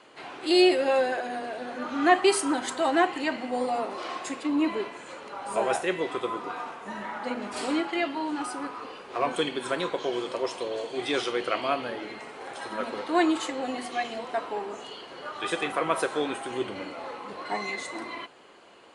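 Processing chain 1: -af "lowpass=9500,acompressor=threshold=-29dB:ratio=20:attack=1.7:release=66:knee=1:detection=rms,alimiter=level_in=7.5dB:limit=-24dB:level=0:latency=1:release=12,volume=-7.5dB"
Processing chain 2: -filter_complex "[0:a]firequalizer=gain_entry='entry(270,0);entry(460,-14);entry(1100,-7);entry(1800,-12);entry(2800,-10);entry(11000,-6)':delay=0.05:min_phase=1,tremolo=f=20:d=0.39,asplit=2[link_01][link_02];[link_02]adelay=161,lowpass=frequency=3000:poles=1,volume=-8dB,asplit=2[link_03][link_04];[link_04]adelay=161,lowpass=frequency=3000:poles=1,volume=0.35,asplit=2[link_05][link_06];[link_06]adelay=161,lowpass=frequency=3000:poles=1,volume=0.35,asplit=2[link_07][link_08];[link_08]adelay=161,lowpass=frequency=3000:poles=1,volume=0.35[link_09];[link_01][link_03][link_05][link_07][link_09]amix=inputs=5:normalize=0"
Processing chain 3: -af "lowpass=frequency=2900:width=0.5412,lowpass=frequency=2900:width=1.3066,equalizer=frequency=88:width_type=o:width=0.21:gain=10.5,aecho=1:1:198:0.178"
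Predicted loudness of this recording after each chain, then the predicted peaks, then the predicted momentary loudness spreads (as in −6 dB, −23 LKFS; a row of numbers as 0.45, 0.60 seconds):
−39.0, −37.0, −29.0 LKFS; −31.5, −18.0, −8.5 dBFS; 3, 16, 14 LU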